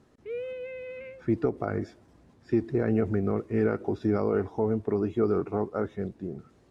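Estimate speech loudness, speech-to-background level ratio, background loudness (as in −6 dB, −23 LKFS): −28.5 LKFS, 10.0 dB, −38.5 LKFS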